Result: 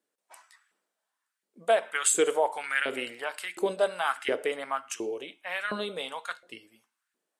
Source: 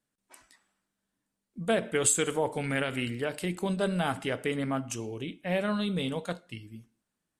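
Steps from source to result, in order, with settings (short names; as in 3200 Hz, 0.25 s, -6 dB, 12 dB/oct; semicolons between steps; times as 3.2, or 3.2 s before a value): LFO high-pass saw up 1.4 Hz 340–1800 Hz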